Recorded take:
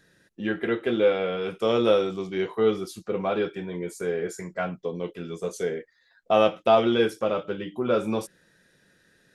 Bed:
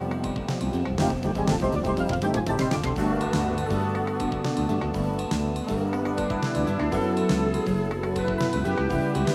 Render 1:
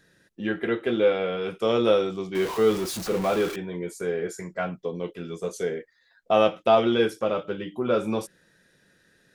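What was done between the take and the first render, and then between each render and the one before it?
2.35–3.56 s: jump at every zero crossing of -29 dBFS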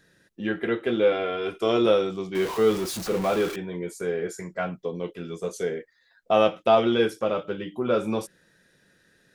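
1.12–1.86 s: comb 2.9 ms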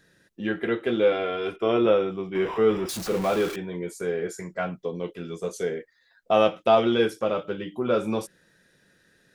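1.56–2.89 s: Savitzky-Golay filter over 25 samples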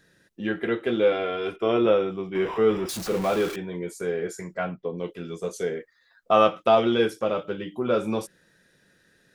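4.57–4.97 s: low-pass 5 kHz -> 1.9 kHz; 5.75–6.69 s: peaking EQ 1.2 kHz +8.5 dB 0.36 oct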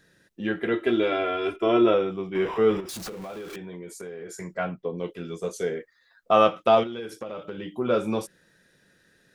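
0.73–1.94 s: comb 3 ms; 2.80–4.40 s: compression 10:1, threshold -34 dBFS; 6.83–7.72 s: compression 16:1, threshold -30 dBFS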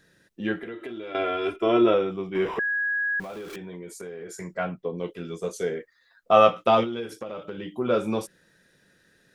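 0.57–1.15 s: compression 8:1, threshold -33 dBFS; 2.59–3.20 s: bleep 1.66 kHz -23 dBFS; 6.31–7.13 s: doubling 17 ms -6 dB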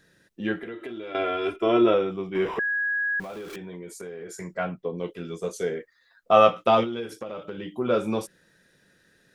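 no audible change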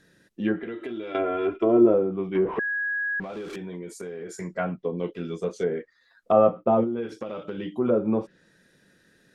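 low-pass that closes with the level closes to 750 Hz, closed at -20.5 dBFS; peaking EQ 250 Hz +4.5 dB 1.3 oct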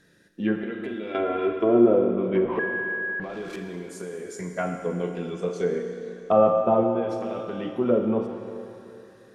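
Schroeder reverb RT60 3 s, combs from 26 ms, DRR 4.5 dB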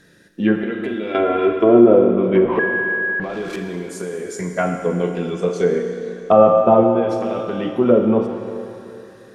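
trim +8 dB; peak limiter -1 dBFS, peak gain reduction 2 dB

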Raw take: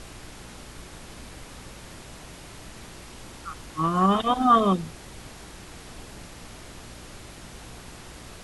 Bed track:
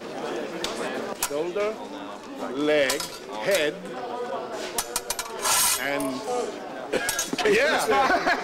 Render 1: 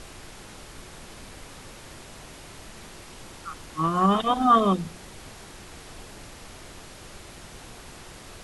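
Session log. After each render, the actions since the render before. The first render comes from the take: de-hum 60 Hz, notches 5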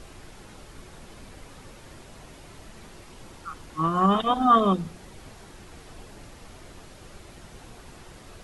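noise reduction 6 dB, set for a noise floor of -45 dBFS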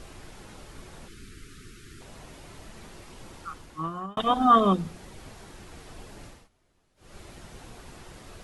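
1.08–2.01 s: elliptic band-stop 410–1300 Hz; 3.41–4.17 s: fade out; 6.26–7.19 s: dip -24 dB, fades 0.23 s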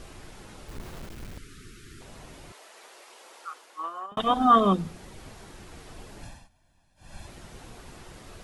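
0.68–1.38 s: square wave that keeps the level; 2.52–4.12 s: high-pass 460 Hz 24 dB/octave; 6.22–7.27 s: comb 1.2 ms, depth 82%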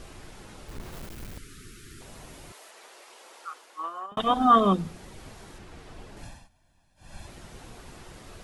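0.92–2.71 s: treble shelf 9.2 kHz +8 dB; 5.58–6.17 s: treble shelf 6 kHz -9 dB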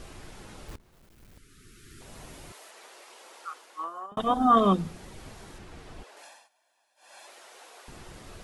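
0.76–2.21 s: fade in quadratic, from -20.5 dB; 3.84–4.57 s: peaking EQ 2.7 kHz -8 dB 1.7 oct; 6.03–7.88 s: high-pass 480 Hz 24 dB/octave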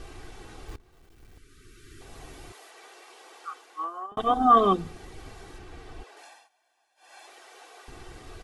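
treble shelf 7 kHz -6.5 dB; comb 2.6 ms, depth 51%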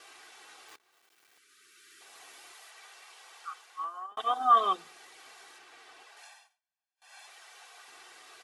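gate with hold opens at -52 dBFS; Bessel high-pass 1.2 kHz, order 2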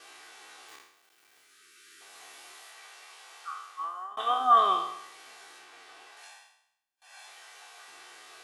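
spectral sustain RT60 0.76 s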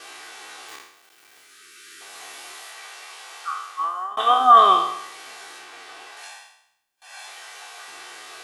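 trim +10 dB; peak limiter -3 dBFS, peak gain reduction 2.5 dB

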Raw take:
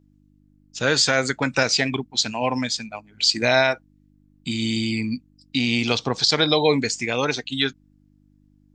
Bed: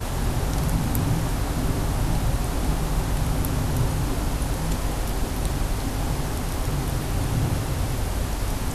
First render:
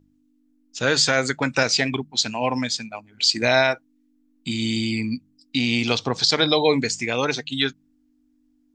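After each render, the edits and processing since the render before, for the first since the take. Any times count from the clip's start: de-hum 50 Hz, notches 4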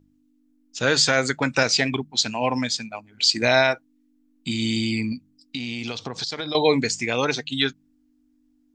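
5.12–6.55 s: compression, threshold -26 dBFS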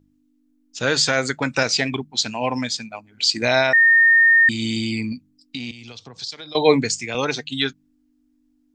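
3.73–4.49 s: bleep 1.83 kHz -10 dBFS; 5.71–7.15 s: three bands expanded up and down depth 100%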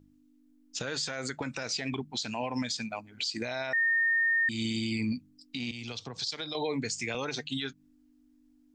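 compression 8:1, threshold -25 dBFS, peak gain reduction 16 dB; peak limiter -23 dBFS, peak gain reduction 10.5 dB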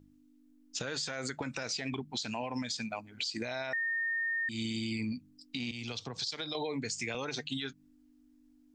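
compression, threshold -32 dBFS, peak gain reduction 7 dB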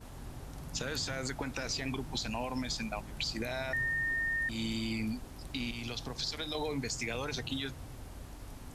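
add bed -21 dB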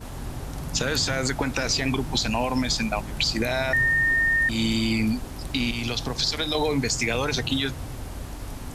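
trim +11.5 dB

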